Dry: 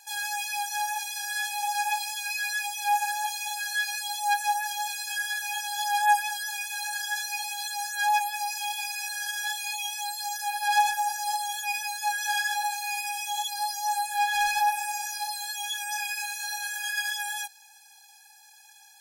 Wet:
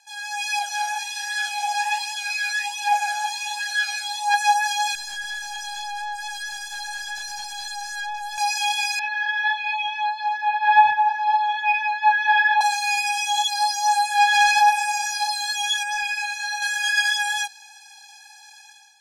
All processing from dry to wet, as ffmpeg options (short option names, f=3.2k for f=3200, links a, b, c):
-filter_complex "[0:a]asettb=1/sr,asplit=3[a][b][c];[a]atrim=end=0.594[d];[b]atrim=start=0.59:end=4.34,asetpts=PTS-STARTPTS,afade=t=in:d=0.004:c=qsin,afade=t=out:st=3.746:d=0.004:c=qsin,equalizer=f=73:t=o:w=1.1:g=-13.5,flanger=delay=2:depth=7:regen=82:speed=1.3:shape=triangular[e];[c]atrim=start=4.336[f];[d][e]acrossfade=d=0.004:c1=hsin:c2=qsin[g];[g][f]acrossfade=d=0.004:c1=qsin:c2=hsin,asettb=1/sr,asplit=3[h][i][j];[h]atrim=end=4.954[k];[i]atrim=start=4.95:end=8.38,asetpts=PTS-STARTPTS,afade=t=in:d=0.004:c=qsin,afade=t=out:st=3.426:d=0.004:c=qsin,asuperstop=centerf=2400:order=12:qfactor=1.7,acompressor=threshold=-30dB:ratio=6:attack=3.2:release=140:knee=1:detection=peak,aeval=exprs='(tanh(63.1*val(0)+0.8)-tanh(0.8))/63.1':c=same[l];[j]atrim=start=8.376[m];[k][l]acrossfade=d=0.004:c1=hsin:c2=qsin[n];[n][m]acrossfade=d=0.004:c1=qsin:c2=hsin,asettb=1/sr,asplit=3[o][p][q];[o]atrim=end=8.994[r];[p]atrim=start=8.99:end=12.61,asetpts=PTS-STARTPTS,afade=t=in:d=0.004:c=qsin,afade=t=out:st=3.616:d=0.004:c=qsin,lowpass=f=2.8k:w=0.5412,lowpass=f=2.8k:w=1.3066,equalizer=f=140:w=0.36:g=14,afreqshift=18[s];[q]atrim=start=12.606[t];[r][s]acrossfade=d=0.004:c1=hsin:c2=qsin[u];[u][t]acrossfade=d=0.004:c1=qsin:c2=hsin,asettb=1/sr,asplit=3[v][w][x];[v]atrim=end=15.834[y];[w]atrim=start=15.83:end=16.62,asetpts=PTS-STARTPTS,afade=t=in:d=0.004:c=qsin,afade=t=out:st=0.786:d=0.004:c=qsin,highpass=f=420:p=1,highshelf=f=3.7k:g=-8.5,asoftclip=type=hard:threshold=-29dB[z];[x]atrim=start=16.616[aa];[y][z]acrossfade=d=0.004:c1=hsin:c2=qsin[ab];[ab][aa]acrossfade=d=0.004:c1=qsin:c2=hsin,lowpass=6.3k,lowshelf=f=460:g=-8,dynaudnorm=f=120:g=7:m=12dB,volume=-1.5dB"